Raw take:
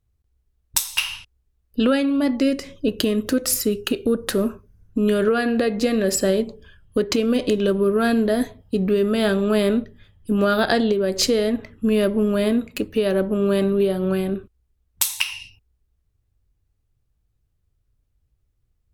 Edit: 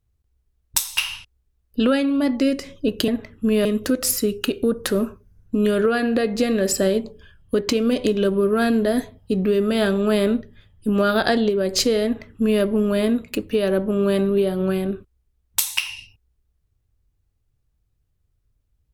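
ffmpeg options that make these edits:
-filter_complex "[0:a]asplit=3[s0][s1][s2];[s0]atrim=end=3.082[s3];[s1]atrim=start=11.478:end=12.052[s4];[s2]atrim=start=3.078[s5];[s3][s4]acrossfade=d=0.004:c1=hsin:c2=hsin[s6];[s6][s5]acrossfade=d=0.004:c1=hsin:c2=hsin"

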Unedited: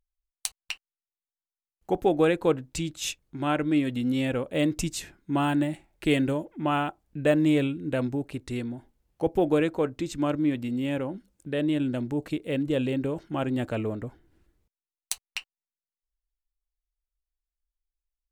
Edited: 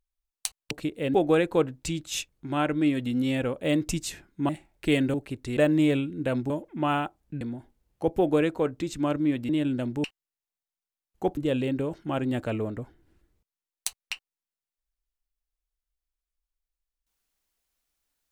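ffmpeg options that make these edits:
-filter_complex "[0:a]asplit=11[s0][s1][s2][s3][s4][s5][s6][s7][s8][s9][s10];[s0]atrim=end=0.712[s11];[s1]atrim=start=12.188:end=12.622[s12];[s2]atrim=start=2.038:end=5.392[s13];[s3]atrim=start=5.678:end=6.332[s14];[s4]atrim=start=8.168:end=8.602[s15];[s5]atrim=start=7.238:end=8.172[s16];[s6]atrim=start=6.328:end=7.242[s17];[s7]atrim=start=8.598:end=10.682[s18];[s8]atrim=start=11.638:end=12.192[s19];[s9]atrim=start=0.708:end=2.042[s20];[s10]atrim=start=12.618[s21];[s11][s12]acrossfade=d=0.004:c1=hsin:c2=hsin[s22];[s22][s13]acrossfade=d=0.004:c1=hsin:c2=hsin[s23];[s23][s14]acrossfade=d=0.004:c1=hsin:c2=hsin[s24];[s24][s15]acrossfade=d=0.004:c1=hsin:c2=hsin[s25];[s25][s16]acrossfade=d=0.004:c1=hsin:c2=hsin[s26];[s26][s17]acrossfade=d=0.004:c1=hsin:c2=hsin[s27];[s27][s18]acrossfade=d=0.004:c1=hsin:c2=hsin[s28];[s28][s19]acrossfade=d=0.004:c1=hsin:c2=hsin[s29];[s29][s20]acrossfade=d=0.004:c1=hsin:c2=hsin[s30];[s30][s21]acrossfade=d=0.004:c1=hsin:c2=hsin"

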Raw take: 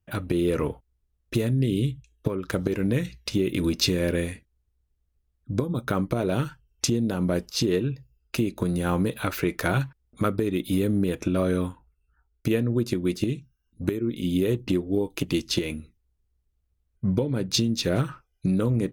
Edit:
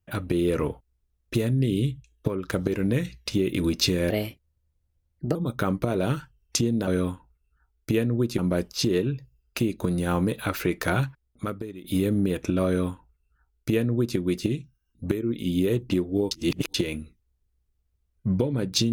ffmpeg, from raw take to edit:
-filter_complex "[0:a]asplit=8[s0][s1][s2][s3][s4][s5][s6][s7];[s0]atrim=end=4.104[s8];[s1]atrim=start=4.1:end=5.64,asetpts=PTS-STARTPTS,asetrate=54243,aresample=44100[s9];[s2]atrim=start=5.636:end=7.162[s10];[s3]atrim=start=11.438:end=12.952[s11];[s4]atrim=start=7.158:end=10.62,asetpts=PTS-STARTPTS,afade=t=out:st=2.592:d=0.87:silence=0.112202[s12];[s5]atrim=start=10.62:end=15.092,asetpts=PTS-STARTPTS,afade=t=in:d=0.004:c=hsin:silence=0.112202[s13];[s6]atrim=start=15.088:end=15.522,asetpts=PTS-STARTPTS,areverse[s14];[s7]atrim=start=15.518[s15];[s8][s9]acrossfade=d=0.004:c1=hsin:c2=hsin[s16];[s16][s10]acrossfade=d=0.004:c1=hsin:c2=hsin[s17];[s17][s11]acrossfade=d=0.004:c1=hsin:c2=hsin[s18];[s12][s13]concat=n=2:v=0:a=1[s19];[s18][s19]acrossfade=d=0.004:c1=hsin:c2=hsin[s20];[s20][s14]acrossfade=d=0.004:c1=hsin:c2=hsin[s21];[s21][s15]acrossfade=d=0.004:c1=hsin:c2=hsin"

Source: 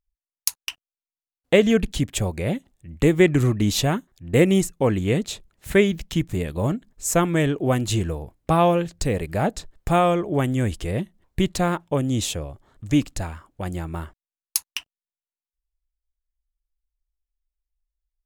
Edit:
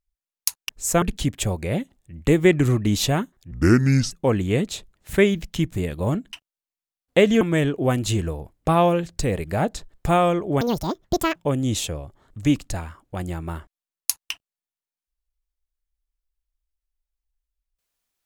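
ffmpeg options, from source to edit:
-filter_complex "[0:a]asplit=9[s0][s1][s2][s3][s4][s5][s6][s7][s8];[s0]atrim=end=0.692[s9];[s1]atrim=start=6.898:end=7.232[s10];[s2]atrim=start=1.768:end=4.264[s11];[s3]atrim=start=4.26:end=4.68,asetpts=PTS-STARTPTS,asetrate=30870,aresample=44100[s12];[s4]atrim=start=4.676:end=6.902[s13];[s5]atrim=start=0.688:end=1.772[s14];[s6]atrim=start=7.228:end=10.434[s15];[s7]atrim=start=10.43:end=11.82,asetpts=PTS-STARTPTS,asetrate=82026,aresample=44100,atrim=end_sample=32956,asetpts=PTS-STARTPTS[s16];[s8]atrim=start=11.816[s17];[s9][s10]acrossfade=d=0.004:c1=hsin:c2=hsin[s18];[s18][s11]acrossfade=d=0.004:c1=hsin:c2=hsin[s19];[s19][s12]acrossfade=d=0.004:c1=hsin:c2=hsin[s20];[s20][s13]acrossfade=d=0.004:c1=hsin:c2=hsin[s21];[s21][s14]acrossfade=d=0.004:c1=hsin:c2=hsin[s22];[s22][s15]acrossfade=d=0.004:c1=hsin:c2=hsin[s23];[s23][s16]acrossfade=d=0.004:c1=hsin:c2=hsin[s24];[s24][s17]acrossfade=d=0.004:c1=hsin:c2=hsin"

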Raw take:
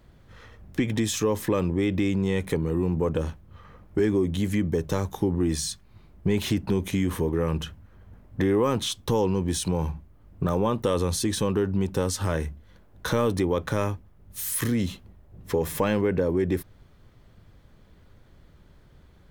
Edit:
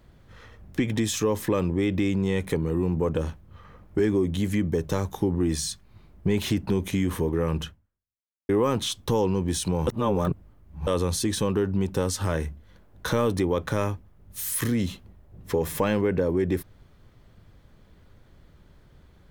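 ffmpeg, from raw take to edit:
-filter_complex "[0:a]asplit=4[s0][s1][s2][s3];[s0]atrim=end=8.49,asetpts=PTS-STARTPTS,afade=t=out:st=7.66:d=0.83:c=exp[s4];[s1]atrim=start=8.49:end=9.872,asetpts=PTS-STARTPTS,afade=t=in:d=0.004:c=hsin[s5];[s2]atrim=start=9.868:end=10.872,asetpts=PTS-STARTPTS,areverse[s6];[s3]atrim=start=10.868[s7];[s4][s5]concat=n=2:v=0:a=1[s8];[s8][s6]acrossfade=d=0.004:c1=hsin:c2=hsin[s9];[s9][s7]acrossfade=d=0.004:c1=hsin:c2=hsin"

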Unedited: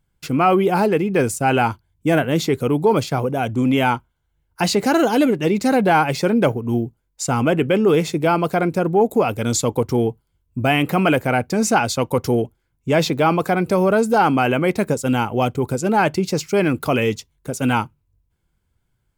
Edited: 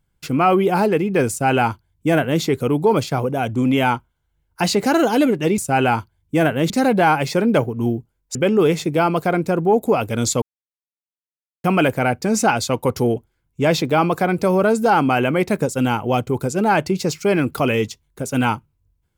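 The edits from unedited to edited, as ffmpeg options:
-filter_complex "[0:a]asplit=6[s0][s1][s2][s3][s4][s5];[s0]atrim=end=5.582[s6];[s1]atrim=start=1.298:end=2.422[s7];[s2]atrim=start=5.578:end=7.232[s8];[s3]atrim=start=7.628:end=9.7,asetpts=PTS-STARTPTS,afade=t=out:st=2.068:d=0.004:c=hsin[s9];[s4]atrim=start=9.7:end=10.92,asetpts=PTS-STARTPTS,volume=0[s10];[s5]atrim=start=10.92,asetpts=PTS-STARTPTS,afade=t=in:d=0.004:c=hsin[s11];[s6][s7]acrossfade=d=0.004:c1=hsin:c2=hsin[s12];[s12][s8]acrossfade=d=0.004:c1=hsin:c2=hsin[s13];[s9][s10][s11]concat=n=3:v=0:a=1[s14];[s13][s14]acrossfade=d=0.004:c1=hsin:c2=hsin"

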